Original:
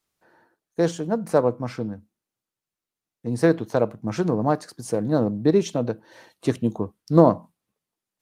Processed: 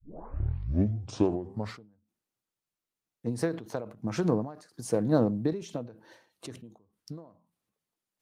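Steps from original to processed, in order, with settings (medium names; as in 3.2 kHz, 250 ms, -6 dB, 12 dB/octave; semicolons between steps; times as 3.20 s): tape start-up on the opening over 1.92 s; endings held to a fixed fall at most 110 dB/s; trim -2.5 dB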